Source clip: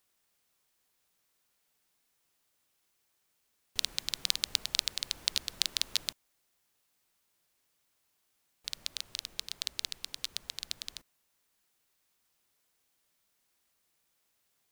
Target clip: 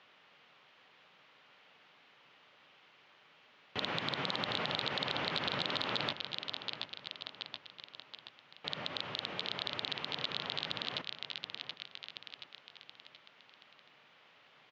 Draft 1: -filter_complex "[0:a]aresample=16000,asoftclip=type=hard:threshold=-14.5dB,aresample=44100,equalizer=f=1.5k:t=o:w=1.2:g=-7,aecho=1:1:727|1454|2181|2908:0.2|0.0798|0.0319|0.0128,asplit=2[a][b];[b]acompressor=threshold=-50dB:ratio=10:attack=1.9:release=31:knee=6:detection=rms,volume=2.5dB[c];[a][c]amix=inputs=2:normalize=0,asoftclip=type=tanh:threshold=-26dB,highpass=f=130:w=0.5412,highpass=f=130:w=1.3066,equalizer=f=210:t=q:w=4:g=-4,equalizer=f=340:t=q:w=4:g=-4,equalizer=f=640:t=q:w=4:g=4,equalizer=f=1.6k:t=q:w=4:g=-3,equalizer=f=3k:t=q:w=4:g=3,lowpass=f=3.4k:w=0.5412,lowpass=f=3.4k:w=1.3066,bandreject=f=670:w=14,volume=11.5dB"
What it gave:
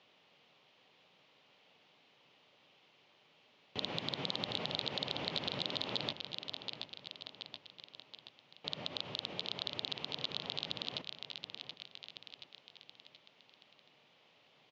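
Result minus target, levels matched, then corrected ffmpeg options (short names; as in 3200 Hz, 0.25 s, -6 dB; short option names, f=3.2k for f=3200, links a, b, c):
compressor: peak gain reduction +7 dB; 2000 Hz band -5.0 dB
-filter_complex "[0:a]aresample=16000,asoftclip=type=hard:threshold=-14.5dB,aresample=44100,equalizer=f=1.5k:t=o:w=1.2:g=4,aecho=1:1:727|1454|2181|2908:0.2|0.0798|0.0319|0.0128,asplit=2[a][b];[b]acompressor=threshold=-40.5dB:ratio=10:attack=1.9:release=31:knee=6:detection=rms,volume=2.5dB[c];[a][c]amix=inputs=2:normalize=0,asoftclip=type=tanh:threshold=-26dB,highpass=f=130:w=0.5412,highpass=f=130:w=1.3066,equalizer=f=210:t=q:w=4:g=-4,equalizer=f=340:t=q:w=4:g=-4,equalizer=f=640:t=q:w=4:g=4,equalizer=f=1.6k:t=q:w=4:g=-3,equalizer=f=3k:t=q:w=4:g=3,lowpass=f=3.4k:w=0.5412,lowpass=f=3.4k:w=1.3066,bandreject=f=670:w=14,volume=11.5dB"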